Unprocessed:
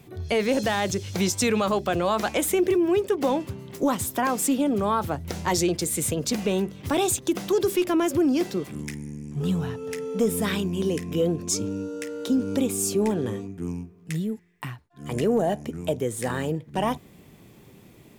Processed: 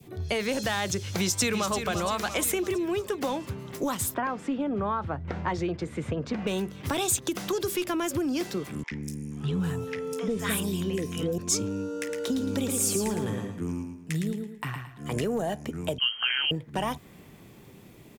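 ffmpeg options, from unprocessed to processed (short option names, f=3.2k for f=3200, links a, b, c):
-filter_complex "[0:a]asplit=2[a][b];[b]afade=t=in:st=1.18:d=0.01,afade=t=out:st=1.75:d=0.01,aecho=0:1:340|680|1020|1360|1700|2040|2380:0.398107|0.218959|0.120427|0.0662351|0.0364293|0.0200361|0.0110199[c];[a][c]amix=inputs=2:normalize=0,asettb=1/sr,asplit=3[d][e][f];[d]atrim=end=4.144[g];[e]atrim=start=4.14:end=6.47,asetpts=PTS-STARTPTS,afade=t=in:d=0.004:c=qsin,afade=t=out:st=2.326:d=0.004:c=qsin,lowpass=1.9k[h];[f]atrim=start=6.466[i];[g][h]acrossfade=d=0.004:c1=hsin:c2=qsin[j];[j][i]acrossfade=d=0.004:c1=qsin:c2=hsin,asettb=1/sr,asplit=3[k][l][m];[k]atrim=end=8.834[n];[l]atrim=start=8.83:end=11.38,asetpts=PTS-STARTPTS,afade=t=in:d=0.004:c=qsin,afade=t=out:st=2.546:d=0.004:c=qsin,acrossover=split=780|4700[o][p][q];[o]adelay=80[r];[q]adelay=200[s];[r][p][s]amix=inputs=3:normalize=0,atrim=end_sample=112455[t];[m]atrim=start=11.376[u];[n][t]acrossfade=d=0.004:c1=hsin:c2=qsin[v];[v][u]acrossfade=d=0.004:c1=qsin:c2=hsin,asettb=1/sr,asplit=3[w][x][y];[w]atrim=end=11.984[z];[x]atrim=start=11.98:end=15.04,asetpts=PTS-STARTPTS,afade=t=in:d=0.004:c=qsin,afade=t=out:st=3.056:d=0.004:c=qsin,aecho=1:1:111|222|333|444:0.531|0.17|0.0544|0.0174,atrim=end_sample=134946[aa];[y]atrim=start=15.036[ab];[z][aa]acrossfade=d=0.004:c1=hsin:c2=qsin[ac];[ac][ab]acrossfade=d=0.004:c1=qsin:c2=hsin,asettb=1/sr,asplit=3[ad][ae][af];[ad]atrim=end=15.984[ag];[ae]atrim=start=15.98:end=16.51,asetpts=PTS-STARTPTS,afade=t=in:d=0.004:c=qsin,afade=t=out:st=0.526:d=0.004:c=qsin,lowpass=f=2.8k:t=q:w=0.5098,lowpass=f=2.8k:t=q:w=0.6013,lowpass=f=2.8k:t=q:w=0.9,lowpass=f=2.8k:t=q:w=2.563,afreqshift=-3300[ah];[af]atrim=start=16.506[ai];[ag][ah]acrossfade=d=0.004:c1=hsin:c2=qsin[aj];[aj][ai]acrossfade=d=0.004:c1=qsin:c2=hsin,adynamicequalizer=threshold=0.00891:dfrequency=1400:dqfactor=0.87:tfrequency=1400:tqfactor=0.87:attack=5:release=100:ratio=0.375:range=3:mode=boostabove:tftype=bell,acrossover=split=130|3000[ak][al][am];[al]acompressor=threshold=-29dB:ratio=3[an];[ak][an][am]amix=inputs=3:normalize=0"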